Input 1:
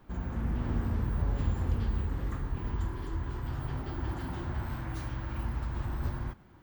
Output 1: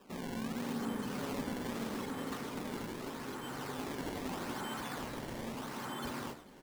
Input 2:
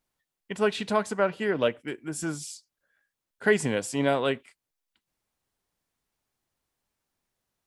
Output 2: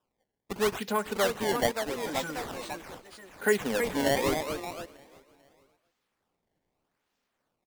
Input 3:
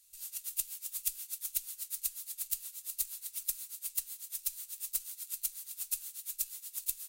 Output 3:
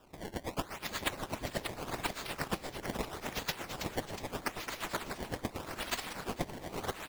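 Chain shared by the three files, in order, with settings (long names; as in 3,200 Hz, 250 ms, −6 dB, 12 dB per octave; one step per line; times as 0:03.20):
high-pass filter 210 Hz 24 dB per octave
in parallel at +0.5 dB: downward compressor, threshold −38 dBFS
on the sum: notch comb filter 330 Hz
sample-and-hold swept by an LFO 20×, swing 160% 0.8 Hz
on a send: repeating echo 445 ms, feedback 42%, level −22.5 dB
on the sum: delay with pitch and tempo change per echo 705 ms, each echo +2 semitones, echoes 2, each echo −6 dB
level −3 dB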